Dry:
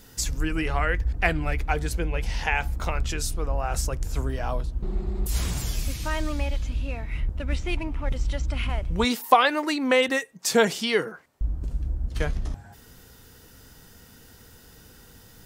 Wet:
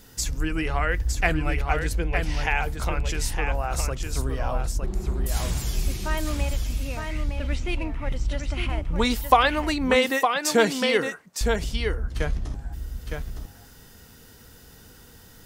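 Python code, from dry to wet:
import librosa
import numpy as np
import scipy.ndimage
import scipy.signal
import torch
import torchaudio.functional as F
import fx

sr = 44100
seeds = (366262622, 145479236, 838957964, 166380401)

y = x + 10.0 ** (-5.5 / 20.0) * np.pad(x, (int(911 * sr / 1000.0), 0))[:len(x)]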